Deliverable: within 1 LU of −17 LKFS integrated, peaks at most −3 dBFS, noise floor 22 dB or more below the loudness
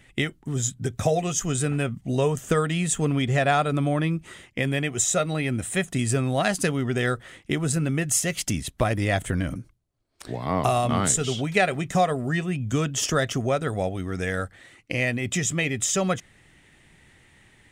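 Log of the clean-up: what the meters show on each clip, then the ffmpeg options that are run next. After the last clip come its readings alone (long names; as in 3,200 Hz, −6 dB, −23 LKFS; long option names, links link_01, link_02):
integrated loudness −25.0 LKFS; sample peak −7.5 dBFS; target loudness −17.0 LKFS
→ -af "volume=8dB,alimiter=limit=-3dB:level=0:latency=1"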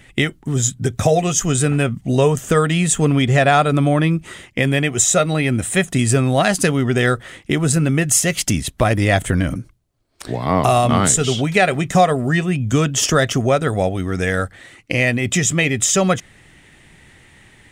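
integrated loudness −17.0 LKFS; sample peak −3.0 dBFS; background noise floor −50 dBFS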